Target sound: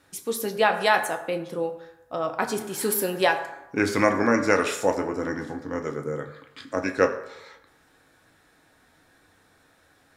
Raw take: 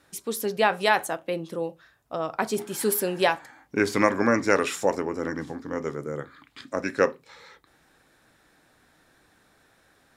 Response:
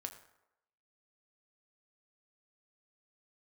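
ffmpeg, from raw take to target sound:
-filter_complex "[1:a]atrim=start_sample=2205[s0];[0:a][s0]afir=irnorm=-1:irlink=0,volume=1.58"

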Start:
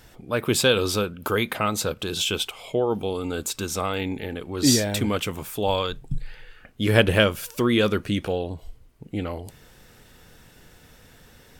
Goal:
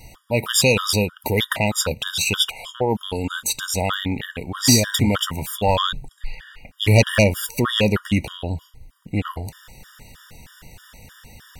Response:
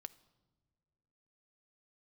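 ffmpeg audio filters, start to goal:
-af "aeval=exprs='0.794*sin(PI/2*2.24*val(0)/0.794)':c=same,equalizer=f=390:t=o:w=1.3:g=-8.5,afftfilt=real='re*gt(sin(2*PI*3.2*pts/sr)*(1-2*mod(floor(b*sr/1024/950),2)),0)':imag='im*gt(sin(2*PI*3.2*pts/sr)*(1-2*mod(floor(b*sr/1024/950),2)),0)':win_size=1024:overlap=0.75,volume=0.891"

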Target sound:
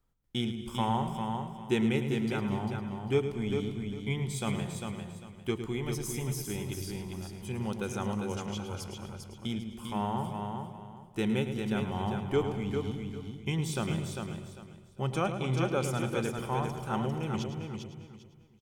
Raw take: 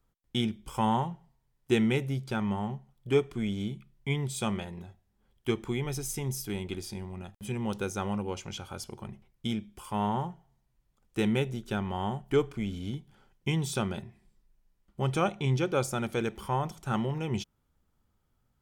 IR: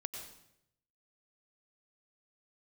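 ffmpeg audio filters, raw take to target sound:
-filter_complex "[0:a]aecho=1:1:399|798|1197:0.531|0.133|0.0332,asplit=2[s0][s1];[1:a]atrim=start_sample=2205,lowshelf=f=250:g=8,adelay=108[s2];[s1][s2]afir=irnorm=-1:irlink=0,volume=0.376[s3];[s0][s3]amix=inputs=2:normalize=0,volume=0.708"

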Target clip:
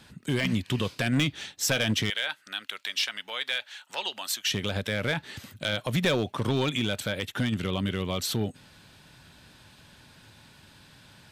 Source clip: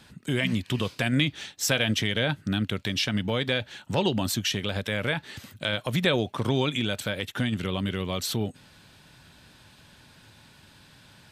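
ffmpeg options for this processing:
-filter_complex "[0:a]asettb=1/sr,asplit=3[s0][s1][s2];[s0]atrim=end=2.104[s3];[s1]atrim=start=2.1:end=4.5,asetpts=PTS-STARTPTS,afade=t=in:d=0.004:c=qsin,afade=t=out:st=2.396:d=0.004:c=qsin,highpass=1100[s4];[s2]atrim=start=4.496[s5];[s3][s4]acrossfade=d=0.004:c1=hsin:c2=qsin[s6];[s6][s5]acrossfade=d=0.004:c1=qsin:c2=hsin,asoftclip=type=hard:threshold=0.119"

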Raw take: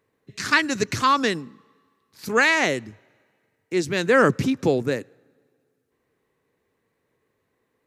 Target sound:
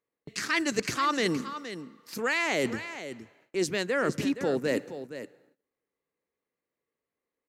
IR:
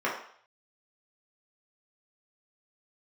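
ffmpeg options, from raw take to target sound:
-filter_complex "[0:a]asplit=2[s0][s1];[s1]alimiter=limit=0.224:level=0:latency=1,volume=1.19[s2];[s0][s2]amix=inputs=2:normalize=0,asetrate=46305,aresample=44100,areverse,acompressor=threshold=0.0447:ratio=6,areverse,agate=range=0.0562:threshold=0.00251:ratio=16:detection=peak,equalizer=f=110:t=o:w=0.96:g=-9.5,aecho=1:1:469:0.266,volume=1.26"

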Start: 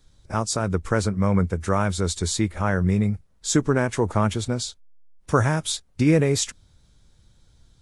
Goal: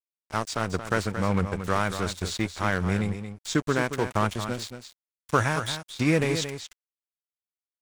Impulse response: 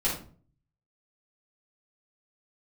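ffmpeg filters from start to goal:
-filter_complex "[0:a]aeval=exprs='sgn(val(0))*max(abs(val(0))-0.0251,0)':c=same,tiltshelf=f=1100:g=-4.5,acrossover=split=4500[s0][s1];[s1]acompressor=threshold=0.0112:ratio=4:attack=1:release=60[s2];[s0][s2]amix=inputs=2:normalize=0,aecho=1:1:226:0.335"

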